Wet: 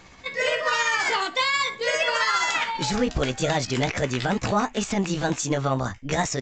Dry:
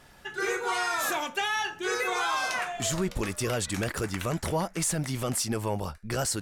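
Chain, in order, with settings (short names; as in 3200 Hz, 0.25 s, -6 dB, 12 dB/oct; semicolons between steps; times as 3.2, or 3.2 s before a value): delay-line pitch shifter +4.5 st; downsampling 16000 Hz; gain +7 dB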